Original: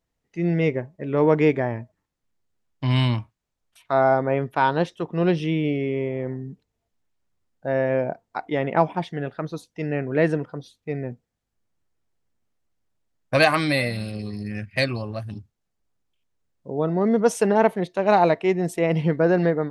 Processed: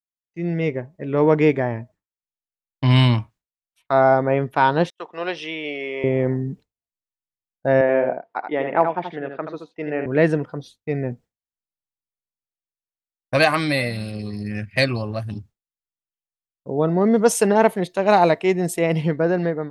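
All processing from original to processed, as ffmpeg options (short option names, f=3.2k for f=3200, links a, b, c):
-filter_complex "[0:a]asettb=1/sr,asplit=3[a][b][c];[a]atrim=end=4.904[d];[b]atrim=start=4.9:end=6.04,asetpts=PTS-STARTPTS,afade=t=in:d=0.004:c=qsin,afade=t=out:st=1.136:d=0.004:c=qsin,agate=range=-33dB:threshold=-40dB:ratio=3:release=100:detection=peak,highpass=720,lowpass=7.2k[e];[c]atrim=start=6.036[f];[d][e]acrossfade=d=0.004:c1=hsin:c2=qsin[g];[g][f]acrossfade=d=0.004:c1=qsin:c2=hsin,asettb=1/sr,asplit=3[h][i][j];[h]atrim=end=7.814[k];[i]atrim=start=7.81:end=10.06,asetpts=PTS-STARTPTS,afade=t=in:d=0.004:c=qsin,afade=t=out:st=2.246:d=0.004:c=qsin,highpass=290,lowpass=2.6k,aecho=1:1:79:0.473,atrim=end_sample=99225[l];[j]atrim=start=10.056[m];[k][l]acrossfade=d=0.004:c1=hsin:c2=qsin[n];[n][m]acrossfade=d=0.004:c1=qsin:c2=hsin,asettb=1/sr,asplit=3[o][p][q];[o]atrim=end=17.144[r];[p]atrim=start=17.14:end=19.12,asetpts=PTS-STARTPTS,afade=t=in:d=0.004:c=qsin,afade=t=out:st=1.976:d=0.004:c=qsin,aemphasis=mode=production:type=cd,bandreject=f=5.8k:w=17[s];[q]atrim=start=19.116[t];[r][s]acrossfade=d=0.004:c1=hsin:c2=qsin[u];[u][t]acrossfade=d=0.004:c1=qsin:c2=hsin,agate=range=-33dB:threshold=-44dB:ratio=3:detection=peak,dynaudnorm=f=150:g=11:m=11dB,volume=-2.5dB"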